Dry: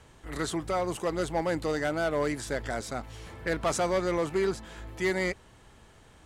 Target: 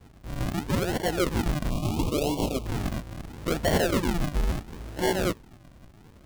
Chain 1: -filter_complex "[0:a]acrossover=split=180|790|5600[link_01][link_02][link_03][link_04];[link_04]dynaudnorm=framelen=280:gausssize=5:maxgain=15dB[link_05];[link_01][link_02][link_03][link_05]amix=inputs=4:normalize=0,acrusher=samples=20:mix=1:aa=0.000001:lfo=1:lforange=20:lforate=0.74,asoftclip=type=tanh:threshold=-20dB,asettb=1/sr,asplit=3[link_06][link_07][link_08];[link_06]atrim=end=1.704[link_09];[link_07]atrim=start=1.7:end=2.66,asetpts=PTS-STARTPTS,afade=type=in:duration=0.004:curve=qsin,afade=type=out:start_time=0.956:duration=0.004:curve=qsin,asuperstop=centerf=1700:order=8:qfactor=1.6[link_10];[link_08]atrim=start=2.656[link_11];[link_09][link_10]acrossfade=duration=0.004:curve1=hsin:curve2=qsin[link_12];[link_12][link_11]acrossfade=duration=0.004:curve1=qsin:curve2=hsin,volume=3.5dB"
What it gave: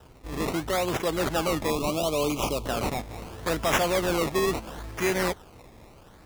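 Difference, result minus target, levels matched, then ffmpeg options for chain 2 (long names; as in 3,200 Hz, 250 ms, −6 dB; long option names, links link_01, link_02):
sample-and-hold swept by an LFO: distortion −17 dB
-filter_complex "[0:a]acrossover=split=180|790|5600[link_01][link_02][link_03][link_04];[link_04]dynaudnorm=framelen=280:gausssize=5:maxgain=15dB[link_05];[link_01][link_02][link_03][link_05]amix=inputs=4:normalize=0,acrusher=samples=69:mix=1:aa=0.000001:lfo=1:lforange=69:lforate=0.74,asoftclip=type=tanh:threshold=-20dB,asettb=1/sr,asplit=3[link_06][link_07][link_08];[link_06]atrim=end=1.704[link_09];[link_07]atrim=start=1.7:end=2.66,asetpts=PTS-STARTPTS,afade=type=in:duration=0.004:curve=qsin,afade=type=out:start_time=0.956:duration=0.004:curve=qsin,asuperstop=centerf=1700:order=8:qfactor=1.6[link_10];[link_08]atrim=start=2.656[link_11];[link_09][link_10]acrossfade=duration=0.004:curve1=hsin:curve2=qsin[link_12];[link_12][link_11]acrossfade=duration=0.004:curve1=qsin:curve2=hsin,volume=3.5dB"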